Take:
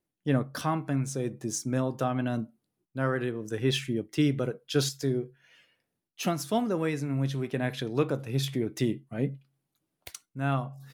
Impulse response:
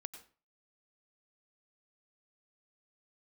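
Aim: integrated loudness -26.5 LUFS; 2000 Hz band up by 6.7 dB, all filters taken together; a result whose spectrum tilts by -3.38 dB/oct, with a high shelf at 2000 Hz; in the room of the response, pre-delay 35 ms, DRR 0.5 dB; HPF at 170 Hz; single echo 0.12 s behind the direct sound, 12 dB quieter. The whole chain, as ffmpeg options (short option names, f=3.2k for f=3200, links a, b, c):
-filter_complex "[0:a]highpass=170,highshelf=f=2k:g=8,equalizer=f=2k:t=o:g=4,aecho=1:1:120:0.251,asplit=2[a][b];[1:a]atrim=start_sample=2205,adelay=35[c];[b][c]afir=irnorm=-1:irlink=0,volume=3dB[d];[a][d]amix=inputs=2:normalize=0,volume=-0.5dB"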